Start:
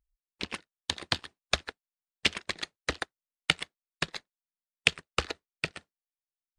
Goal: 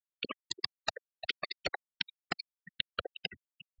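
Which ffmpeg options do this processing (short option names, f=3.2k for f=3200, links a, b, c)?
-filter_complex "[0:a]areverse,acompressor=mode=upward:threshold=-34dB:ratio=2.5,areverse,aeval=exprs='0.75*(cos(1*acos(clip(val(0)/0.75,-1,1)))-cos(1*PI/2))+0.0266*(cos(5*acos(clip(val(0)/0.75,-1,1)))-cos(5*PI/2))+0.00596*(cos(6*acos(clip(val(0)/0.75,-1,1)))-cos(6*PI/2))':c=same,asplit=2[a][b];[b]aecho=0:1:619:0.075[c];[a][c]amix=inputs=2:normalize=0,acompressor=threshold=-41dB:ratio=12,afftfilt=real='re*gte(hypot(re,im),0.0158)':imag='im*gte(hypot(re,im),0.0158)':win_size=1024:overlap=0.75,asetrate=27781,aresample=44100,atempo=1.5874,equalizer=f=460:w=0.99:g=12.5,asetrate=76440,aresample=44100,equalizer=f=5k:w=2.3:g=7.5,volume=6dB"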